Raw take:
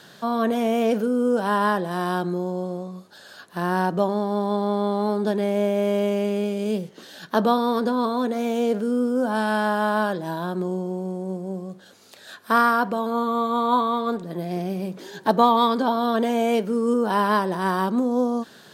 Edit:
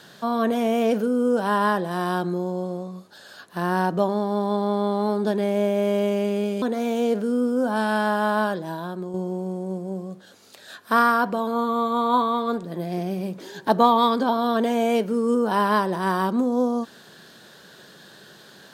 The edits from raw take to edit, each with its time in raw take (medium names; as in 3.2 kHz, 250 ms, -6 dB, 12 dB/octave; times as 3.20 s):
6.62–8.21 s: delete
9.99–10.73 s: fade out, to -7 dB